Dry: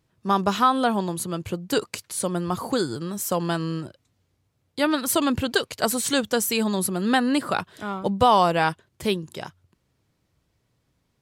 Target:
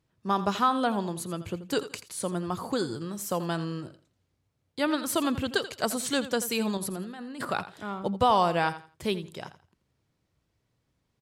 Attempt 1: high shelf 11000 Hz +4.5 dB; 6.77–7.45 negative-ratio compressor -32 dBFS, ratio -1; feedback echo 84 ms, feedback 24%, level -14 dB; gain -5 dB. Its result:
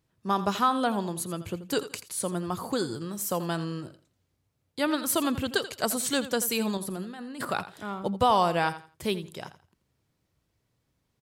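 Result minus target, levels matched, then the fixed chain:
8000 Hz band +3.0 dB
high shelf 11000 Hz -6 dB; 6.77–7.45 negative-ratio compressor -32 dBFS, ratio -1; feedback echo 84 ms, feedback 24%, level -14 dB; gain -5 dB

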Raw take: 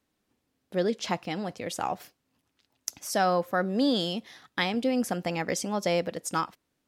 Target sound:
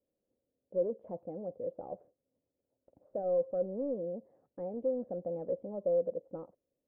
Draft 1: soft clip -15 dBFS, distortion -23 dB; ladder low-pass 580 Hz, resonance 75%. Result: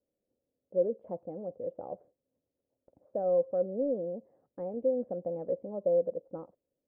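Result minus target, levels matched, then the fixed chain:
soft clip: distortion -12 dB
soft clip -24.5 dBFS, distortion -11 dB; ladder low-pass 580 Hz, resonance 75%

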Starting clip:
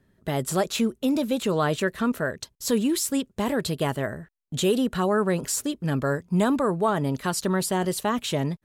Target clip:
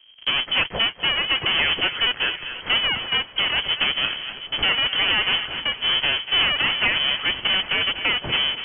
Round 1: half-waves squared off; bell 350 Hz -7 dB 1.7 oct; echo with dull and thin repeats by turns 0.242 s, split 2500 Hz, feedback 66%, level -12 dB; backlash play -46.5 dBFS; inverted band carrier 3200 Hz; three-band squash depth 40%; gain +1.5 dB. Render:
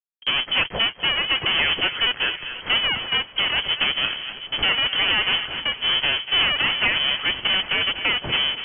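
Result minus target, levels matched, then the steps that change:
backlash: distortion +8 dB
change: backlash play -55 dBFS

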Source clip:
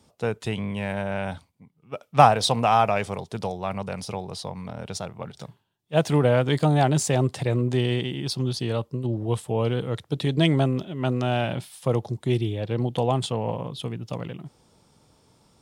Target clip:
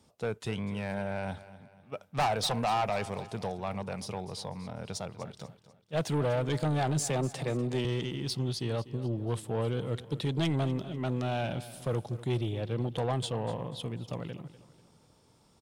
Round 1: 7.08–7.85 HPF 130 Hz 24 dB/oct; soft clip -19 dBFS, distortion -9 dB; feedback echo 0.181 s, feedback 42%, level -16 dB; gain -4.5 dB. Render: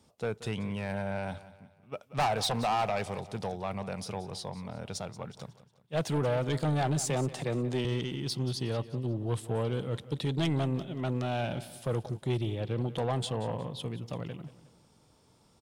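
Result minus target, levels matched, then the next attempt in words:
echo 65 ms early
7.08–7.85 HPF 130 Hz 24 dB/oct; soft clip -19 dBFS, distortion -9 dB; feedback echo 0.246 s, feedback 42%, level -16 dB; gain -4.5 dB

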